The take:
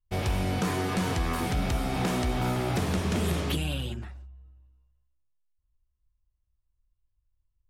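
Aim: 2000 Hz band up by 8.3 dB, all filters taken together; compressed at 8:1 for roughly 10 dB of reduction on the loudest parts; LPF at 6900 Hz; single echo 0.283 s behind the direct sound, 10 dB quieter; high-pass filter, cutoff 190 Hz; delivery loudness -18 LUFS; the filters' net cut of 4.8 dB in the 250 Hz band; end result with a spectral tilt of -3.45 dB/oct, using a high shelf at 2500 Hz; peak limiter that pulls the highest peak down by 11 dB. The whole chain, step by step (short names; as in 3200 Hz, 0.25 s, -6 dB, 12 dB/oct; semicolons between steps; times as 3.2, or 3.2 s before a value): HPF 190 Hz; LPF 6900 Hz; bell 250 Hz -4 dB; bell 2000 Hz +8 dB; high shelf 2500 Hz +5 dB; compressor 8:1, threshold -35 dBFS; limiter -34.5 dBFS; echo 0.283 s -10 dB; gain +24.5 dB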